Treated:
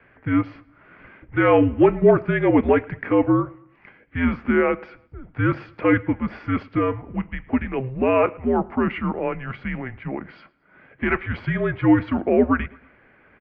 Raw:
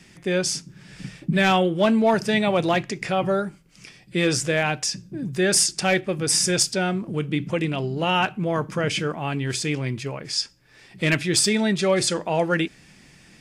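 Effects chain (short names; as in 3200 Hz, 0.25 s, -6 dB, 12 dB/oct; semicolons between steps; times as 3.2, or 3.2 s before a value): tilt shelf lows +7.5 dB, about 1300 Hz; feedback echo 0.111 s, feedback 44%, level -24 dB; mistuned SSB -260 Hz 490–2700 Hz; gain +3 dB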